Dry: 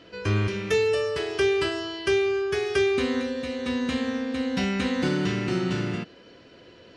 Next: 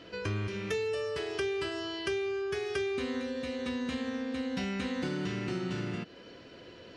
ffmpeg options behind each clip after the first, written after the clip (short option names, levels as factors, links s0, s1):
-af "acompressor=threshold=0.0178:ratio=2.5"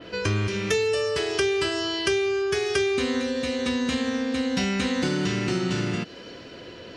-af "adynamicequalizer=threshold=0.00126:dfrequency=7000:dqfactor=0.71:tfrequency=7000:tqfactor=0.71:attack=5:release=100:ratio=0.375:range=3.5:mode=boostabove:tftype=bell,volume=2.66"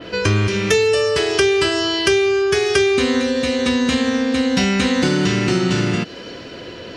-af "asoftclip=type=hard:threshold=0.237,volume=2.51"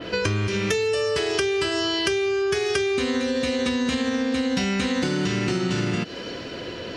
-af "acompressor=threshold=0.0891:ratio=5"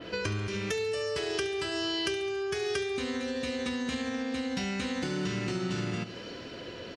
-af "aecho=1:1:70|140|210|280|350|420:0.211|0.125|0.0736|0.0434|0.0256|0.0151,volume=0.376"